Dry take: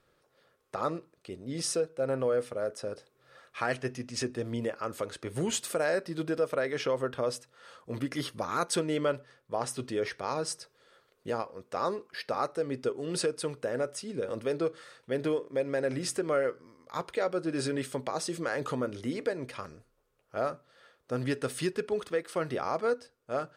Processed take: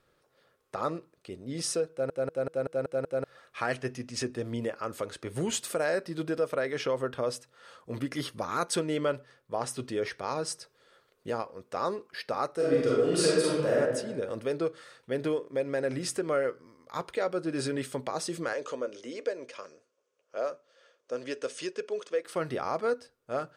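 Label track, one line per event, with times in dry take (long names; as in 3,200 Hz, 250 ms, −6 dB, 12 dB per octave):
1.910000	1.910000	stutter in place 0.19 s, 7 plays
12.550000	13.780000	thrown reverb, RT60 1.2 s, DRR −6.5 dB
18.530000	22.250000	loudspeaker in its box 430–7,800 Hz, peaks and dips at 530 Hz +5 dB, 810 Hz −9 dB, 1,300 Hz −5 dB, 1,900 Hz −5 dB, 4,000 Hz −5 dB, 6,200 Hz +5 dB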